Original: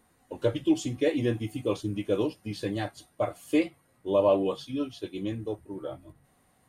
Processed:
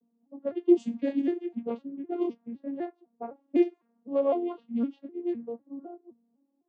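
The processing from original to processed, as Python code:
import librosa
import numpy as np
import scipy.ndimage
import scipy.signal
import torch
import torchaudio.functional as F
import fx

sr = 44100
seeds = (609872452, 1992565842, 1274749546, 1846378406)

y = fx.vocoder_arp(x, sr, chord='minor triad', root=58, every_ms=254)
y = fx.env_lowpass(y, sr, base_hz=390.0, full_db=-22.5)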